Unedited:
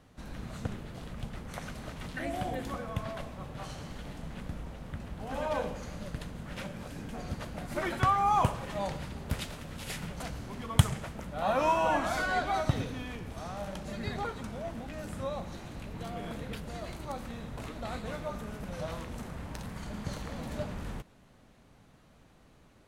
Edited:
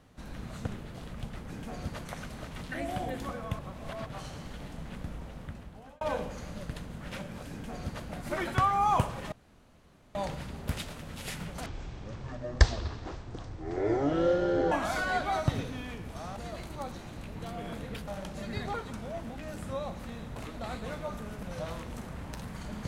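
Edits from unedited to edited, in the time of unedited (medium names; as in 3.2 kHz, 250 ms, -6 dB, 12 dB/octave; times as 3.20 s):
3.04–3.51 s: reverse
4.83–5.46 s: fade out
6.96–7.51 s: copy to 1.50 s
8.77 s: insert room tone 0.83 s
10.28–11.93 s: speed 54%
13.58–15.50 s: swap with 16.66–17.21 s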